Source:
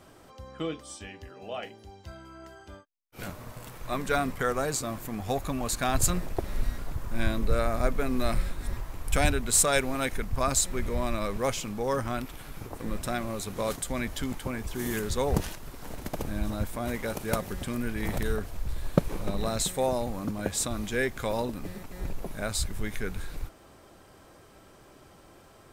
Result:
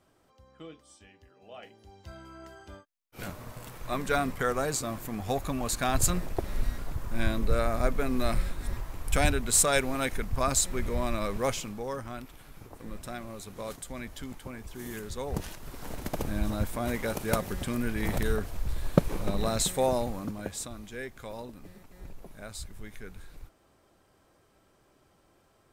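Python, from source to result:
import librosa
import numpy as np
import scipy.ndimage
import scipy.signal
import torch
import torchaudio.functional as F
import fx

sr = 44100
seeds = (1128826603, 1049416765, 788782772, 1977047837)

y = fx.gain(x, sr, db=fx.line((1.38, -13.0), (2.18, -0.5), (11.52, -0.5), (11.98, -8.0), (15.28, -8.0), (15.75, 1.0), (19.98, 1.0), (20.82, -11.0)))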